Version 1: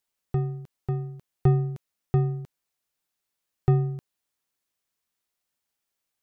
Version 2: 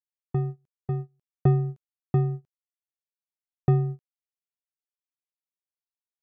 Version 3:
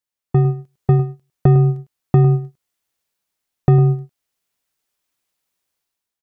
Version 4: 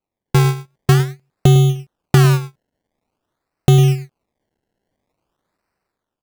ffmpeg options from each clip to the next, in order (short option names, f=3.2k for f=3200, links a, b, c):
-af "agate=range=-28dB:threshold=-30dB:ratio=16:detection=peak"
-af "dynaudnorm=f=150:g=7:m=11dB,alimiter=limit=-11dB:level=0:latency=1:release=249,aecho=1:1:103:0.211,volume=8dB"
-af "acrusher=samples=25:mix=1:aa=0.000001:lfo=1:lforange=25:lforate=0.48,volume=1.5dB"